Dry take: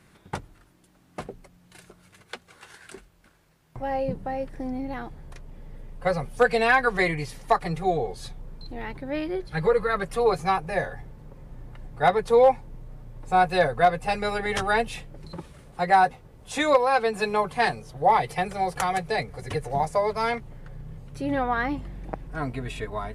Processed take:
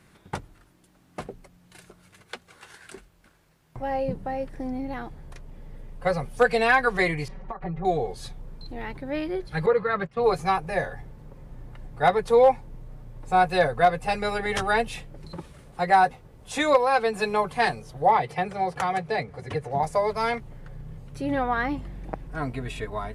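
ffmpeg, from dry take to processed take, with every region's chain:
-filter_complex "[0:a]asettb=1/sr,asplit=3[s0][s1][s2];[s0]atrim=end=7.284[s3];[s1]atrim=start=7.28:end=7.85,asetpts=PTS-STARTPTS,afade=t=in:d=0.004:c=qsin,afade=t=out:st=0.566:d=0.004:c=qsin,lowpass=1400,acompressor=threshold=0.0282:ratio=10:attack=3.2:release=140:knee=1:detection=peak,aecho=1:1:5.3:0.8,atrim=end_sample=25137[s4];[s2]atrim=start=7.846[s5];[s3][s4]acrossfade=d=0.004:c1=hsin:c2=qsin[s6];[s6][s5]acrossfade=d=0.004:c1=qsin:c2=hsin,asettb=1/sr,asplit=3[s7][s8][s9];[s7]atrim=end=9.664[s10];[s8]atrim=start=9.66:end=10.24,asetpts=PTS-STARTPTS,afade=t=in:d=0.004:c=qsin,afade=t=out:st=0.576:d=0.004:c=qsin,agate=range=0.2:threshold=0.0224:ratio=16:release=100:detection=peak,highpass=100,lowpass=3600,asubboost=boost=7.5:cutoff=250[s11];[s9]atrim=start=10.236[s12];[s10][s11]acrossfade=d=0.004:c1=hsin:c2=qsin[s13];[s13][s12]acrossfade=d=0.004:c1=qsin:c2=hsin,asettb=1/sr,asplit=3[s14][s15][s16];[s14]atrim=end=18.104[s17];[s15]atrim=start=18.1:end=19.83,asetpts=PTS-STARTPTS,afade=t=in:d=0.004:c=qsin,afade=t=out:st=1.726:d=0.004:c=qsin,highpass=80,aemphasis=mode=reproduction:type=50kf[s18];[s16]atrim=start=19.826[s19];[s17][s18]acrossfade=d=0.004:c1=hsin:c2=qsin[s20];[s20][s19]acrossfade=d=0.004:c1=qsin:c2=hsin"

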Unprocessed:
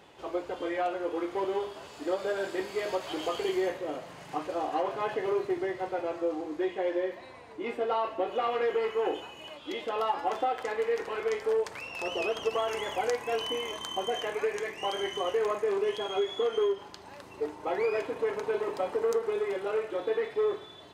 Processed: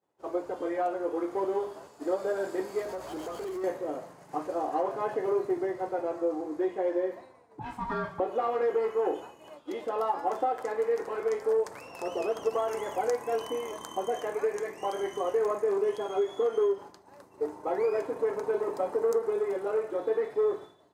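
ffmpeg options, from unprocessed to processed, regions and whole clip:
-filter_complex "[0:a]asettb=1/sr,asplit=3[s0][s1][s2];[s0]atrim=end=2.824[s3];[s1]atrim=start=2.82:end=3.64,asetpts=PTS-STARTPTS,afade=t=in:d=0.004:c=qsin,afade=t=out:st=0.816:d=0.004:c=qsin,acompressor=threshold=0.0316:ratio=4:attack=3.2:release=140:knee=1:detection=peak,aeval=exprs='val(0)+0.00251*(sin(2*PI*60*n/s)+sin(2*PI*2*60*n/s)/2+sin(2*PI*3*60*n/s)/3+sin(2*PI*4*60*n/s)/4+sin(2*PI*5*60*n/s)/5)':c=same,asoftclip=type=hard:threshold=0.0211[s4];[s2]atrim=start=3.636[s5];[s3][s4]acrossfade=d=0.004:c1=hsin:c2=qsin[s6];[s6][s5]acrossfade=d=0.004:c1=qsin:c2=hsin,asettb=1/sr,asplit=3[s7][s8][s9];[s7]atrim=end=7.594[s10];[s8]atrim=start=7.59:end=8.2,asetpts=PTS-STARTPTS,afade=t=in:d=0.004:c=qsin,afade=t=out:st=0.606:d=0.004:c=qsin,aeval=exprs='val(0)*sin(2*PI*490*n/s)':c=same,adynamicequalizer=threshold=0.00501:dfrequency=2000:dqfactor=0.7:tfrequency=2000:tqfactor=0.7:attack=5:release=100:ratio=0.375:range=2.5:mode=boostabove:tftype=highshelf[s11];[s9]atrim=start=8.196[s12];[s10][s11]acrossfade=d=0.004:c1=hsin:c2=qsin[s13];[s13][s12]acrossfade=d=0.004:c1=qsin:c2=hsin,agate=range=0.0224:threshold=0.00891:ratio=3:detection=peak,highpass=f=160:p=1,equalizer=f=3000:w=0.89:g=-14.5,volume=1.33"

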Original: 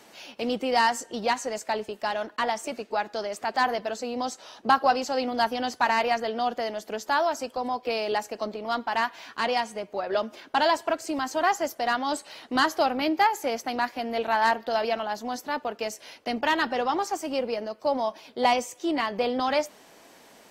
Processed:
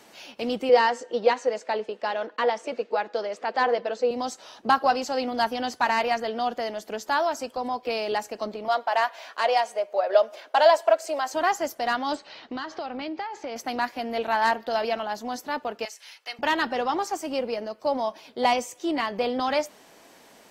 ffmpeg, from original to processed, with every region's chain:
-filter_complex "[0:a]asettb=1/sr,asplit=3[s0][s1][s2];[s0]atrim=end=0.694[s3];[s1]atrim=start=0.69:end=4.11,asetpts=PTS-STARTPTS,afade=t=in:d=0.004:c=qsin,afade=t=out:st=3.416:d=0.004:c=qsin,highpass=220,lowpass=4400,equalizer=f=490:w=7.6:g=13[s4];[s2]atrim=start=4.106[s5];[s3][s4]acrossfade=d=0.004:c1=hsin:c2=qsin[s6];[s6][s5]acrossfade=d=0.004:c1=qsin:c2=hsin,asettb=1/sr,asplit=3[s7][s8][s9];[s7]atrim=end=8.684[s10];[s8]atrim=start=8.68:end=11.33,asetpts=PTS-STARTPTS,afade=t=in:d=0.004:c=qsin,afade=t=out:st=2.646:d=0.004:c=qsin,highpass=f=610:t=q:w=3.3,equalizer=f=860:w=1.5:g=-3[s11];[s9]atrim=start=11.326[s12];[s10][s11]acrossfade=d=0.004:c1=hsin:c2=qsin[s13];[s13][s12]acrossfade=d=0.004:c1=qsin:c2=hsin,asettb=1/sr,asplit=3[s14][s15][s16];[s14]atrim=end=12.154[s17];[s15]atrim=start=12.15:end=13.56,asetpts=PTS-STARTPTS,afade=t=in:d=0.004:c=qsin,afade=t=out:st=1.406:d=0.004:c=qsin,lowpass=f=5200:w=0.5412,lowpass=f=5200:w=1.3066,acompressor=threshold=0.0355:ratio=8:attack=3.2:release=140:knee=1:detection=peak[s18];[s16]atrim=start=13.556[s19];[s17][s18]acrossfade=d=0.004:c1=hsin:c2=qsin[s20];[s20][s19]acrossfade=d=0.004:c1=qsin:c2=hsin,asettb=1/sr,asplit=3[s21][s22][s23];[s21]atrim=end=15.854[s24];[s22]atrim=start=15.85:end=16.39,asetpts=PTS-STARTPTS,afade=t=in:d=0.004:c=qsin,afade=t=out:st=0.536:d=0.004:c=qsin,acrossover=split=5800[s25][s26];[s26]acompressor=threshold=0.00447:ratio=4:attack=1:release=60[s27];[s25][s27]amix=inputs=2:normalize=0,highpass=1300,aecho=1:1:2.3:0.31,atrim=end_sample=23814[s28];[s23]atrim=start=16.386[s29];[s24][s28]acrossfade=d=0.004:c1=hsin:c2=qsin[s30];[s30][s29]acrossfade=d=0.004:c1=qsin:c2=hsin"

